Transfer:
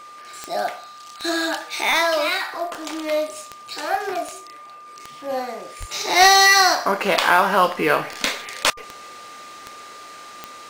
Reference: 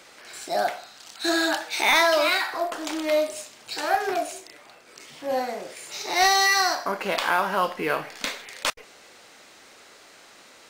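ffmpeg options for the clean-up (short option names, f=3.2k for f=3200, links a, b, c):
-filter_complex "[0:a]adeclick=t=4,bandreject=f=1.2k:w=30,asplit=3[a][b][c];[a]afade=t=out:st=5.79:d=0.02[d];[b]highpass=f=140:w=0.5412,highpass=f=140:w=1.3066,afade=t=in:st=5.79:d=0.02,afade=t=out:st=5.91:d=0.02[e];[c]afade=t=in:st=5.91:d=0.02[f];[d][e][f]amix=inputs=3:normalize=0,asetnsamples=n=441:p=0,asendcmd='5.91 volume volume -7dB',volume=0dB"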